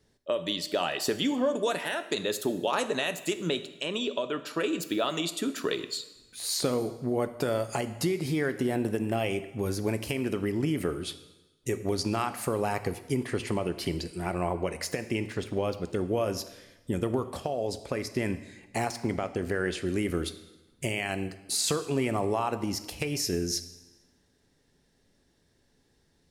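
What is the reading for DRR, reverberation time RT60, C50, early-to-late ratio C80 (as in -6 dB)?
10.5 dB, 1.1 s, 13.5 dB, 15.0 dB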